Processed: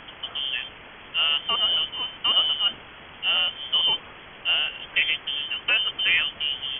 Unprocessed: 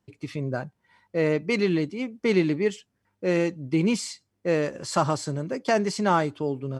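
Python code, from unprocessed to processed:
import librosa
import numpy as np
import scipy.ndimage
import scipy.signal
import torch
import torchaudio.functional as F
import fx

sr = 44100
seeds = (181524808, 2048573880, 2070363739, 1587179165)

y = fx.quant_dither(x, sr, seeds[0], bits=6, dither='triangular')
y = fx.freq_invert(y, sr, carrier_hz=3300)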